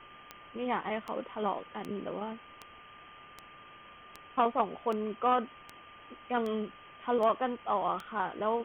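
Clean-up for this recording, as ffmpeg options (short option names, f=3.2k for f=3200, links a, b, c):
-af "adeclick=t=4,bandreject=f=1.2k:w=30,afwtdn=0.0045"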